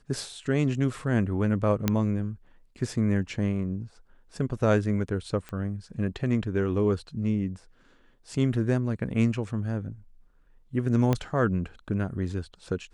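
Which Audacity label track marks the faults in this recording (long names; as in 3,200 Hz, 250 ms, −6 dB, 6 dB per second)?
1.880000	1.880000	click −9 dBFS
5.490000	5.490000	click −23 dBFS
11.130000	11.130000	click −12 dBFS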